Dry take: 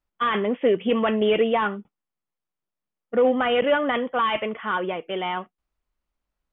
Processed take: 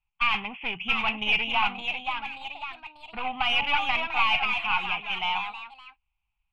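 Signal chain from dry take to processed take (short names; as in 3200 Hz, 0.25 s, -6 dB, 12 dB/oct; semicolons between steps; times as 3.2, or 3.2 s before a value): tracing distortion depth 0.1 ms; echoes that change speed 0.699 s, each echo +2 st, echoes 3, each echo -6 dB; EQ curve 130 Hz 0 dB, 260 Hz -19 dB, 560 Hz -29 dB, 800 Hz +2 dB, 1800 Hz -12 dB, 2500 Hz +13 dB, 3800 Hz -7 dB, 5700 Hz -19 dB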